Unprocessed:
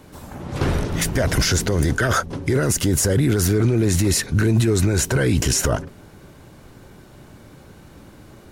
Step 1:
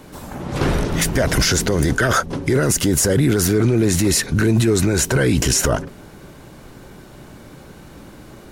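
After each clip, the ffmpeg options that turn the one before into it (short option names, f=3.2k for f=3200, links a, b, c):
-filter_complex "[0:a]equalizer=f=92:t=o:w=0.58:g=-6.5,asplit=2[a][b];[b]alimiter=limit=-16.5dB:level=0:latency=1:release=100,volume=-2.5dB[c];[a][c]amix=inputs=2:normalize=0"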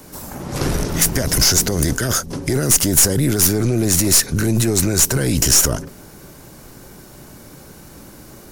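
-filter_complex "[0:a]aexciter=amount=3.4:drive=2.6:freq=4.8k,acrossover=split=370|3000[a][b][c];[b]acompressor=threshold=-24dB:ratio=6[d];[a][d][c]amix=inputs=3:normalize=0,aeval=exprs='(tanh(2*val(0)+0.55)-tanh(0.55))/2':c=same,volume=1.5dB"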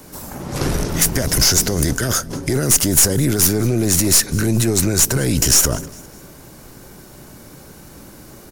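-af "aecho=1:1:202|404|606:0.0794|0.0334|0.014"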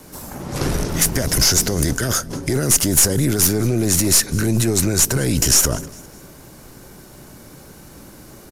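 -af "aresample=32000,aresample=44100,volume=-1dB"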